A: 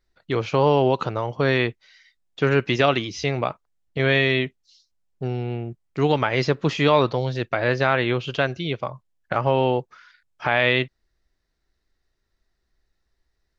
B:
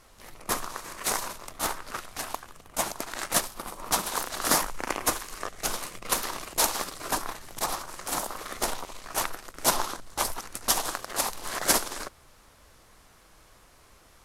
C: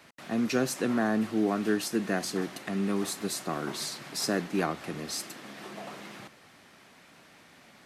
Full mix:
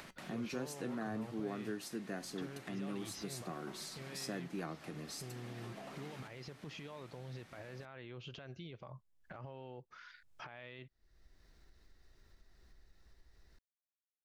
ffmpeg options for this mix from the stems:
ffmpeg -i stem1.wav -i stem2.wav -i stem3.wav -filter_complex "[0:a]acompressor=threshold=-27dB:ratio=6,alimiter=level_in=3.5dB:limit=-24dB:level=0:latency=1,volume=-3.5dB,volume=-13.5dB[link_01];[2:a]acompressor=threshold=-43dB:ratio=1.5,flanger=delay=5.3:depth=2.2:regen=75:speed=0.26:shape=sinusoidal,volume=-3.5dB[link_02];[link_01][link_02]amix=inputs=2:normalize=0,lowshelf=frequency=270:gain=4,acompressor=mode=upward:threshold=-44dB:ratio=2.5" out.wav

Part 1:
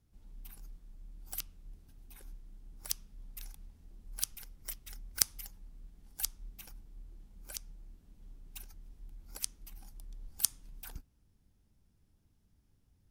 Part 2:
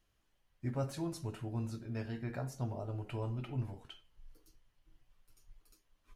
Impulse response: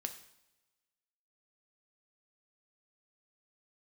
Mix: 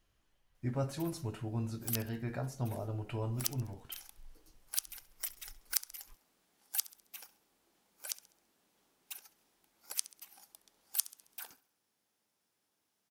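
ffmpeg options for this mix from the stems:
-filter_complex "[0:a]highpass=580,adelay=550,volume=3dB,asplit=2[link_01][link_02];[link_02]volume=-18.5dB[link_03];[1:a]volume=1.5dB[link_04];[link_03]aecho=0:1:67|134|201|268|335|402:1|0.41|0.168|0.0689|0.0283|0.0116[link_05];[link_01][link_04][link_05]amix=inputs=3:normalize=0,alimiter=limit=-8.5dB:level=0:latency=1:release=425"

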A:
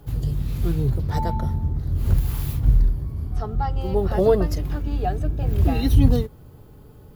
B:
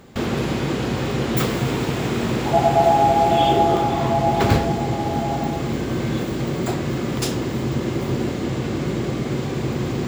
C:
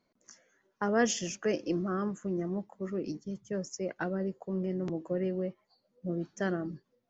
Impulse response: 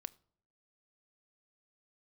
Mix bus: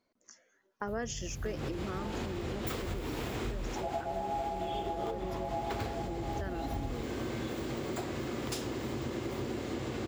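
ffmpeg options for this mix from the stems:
-filter_complex "[0:a]adelay=800,volume=-14.5dB[link_01];[1:a]equalizer=frequency=160:width_type=o:width=0.74:gain=-10.5,adelay=1300,volume=-6.5dB[link_02];[2:a]equalizer=frequency=160:width=4.1:gain=-12,volume=-1.5dB,asplit=2[link_03][link_04];[link_04]apad=whole_len=501656[link_05];[link_02][link_05]sidechaincompress=threshold=-37dB:ratio=8:attack=5.7:release=179[link_06];[link_01][link_06][link_03]amix=inputs=3:normalize=0,acompressor=threshold=-33dB:ratio=5"

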